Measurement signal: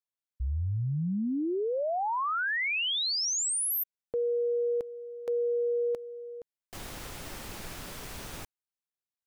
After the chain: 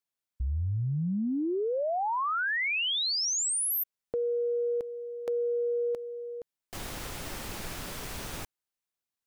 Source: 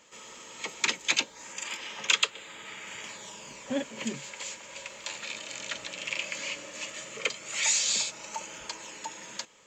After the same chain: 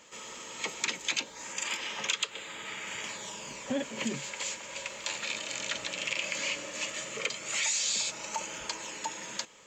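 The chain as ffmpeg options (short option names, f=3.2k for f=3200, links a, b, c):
-af "acompressor=threshold=-31dB:ratio=4:attack=9.6:release=87:knee=1:detection=rms,volume=3dB"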